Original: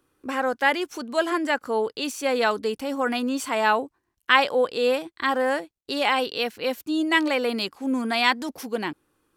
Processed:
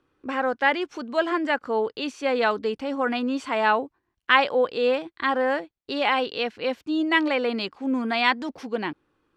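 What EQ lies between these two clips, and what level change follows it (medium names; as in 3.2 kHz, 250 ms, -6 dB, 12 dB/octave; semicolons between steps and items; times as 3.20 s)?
low-pass 3.8 kHz 12 dB/octave; 0.0 dB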